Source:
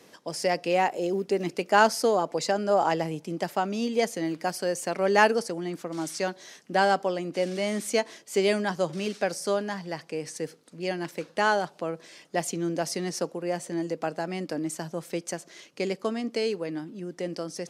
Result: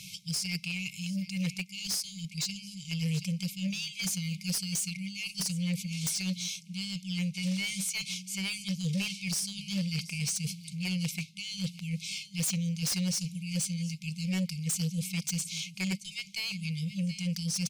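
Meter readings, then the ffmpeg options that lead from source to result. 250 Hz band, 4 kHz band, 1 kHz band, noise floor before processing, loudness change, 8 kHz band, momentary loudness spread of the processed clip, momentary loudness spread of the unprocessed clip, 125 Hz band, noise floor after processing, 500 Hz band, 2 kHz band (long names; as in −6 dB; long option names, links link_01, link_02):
−2.0 dB, +2.5 dB, −30.5 dB, −55 dBFS, −5.0 dB, +4.5 dB, 5 LU, 11 LU, +6.0 dB, −49 dBFS, −27.0 dB, −7.5 dB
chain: -af "aecho=1:1:728:0.106,areverse,acompressor=threshold=-33dB:ratio=10,areverse,afftfilt=real='re*(1-between(b*sr/4096,200,2100))':imag='im*(1-between(b*sr/4096,200,2100))':win_size=4096:overlap=0.75,aeval=exprs='0.0596*sin(PI/2*3.98*val(0)/0.0596)':channel_layout=same,volume=-2dB"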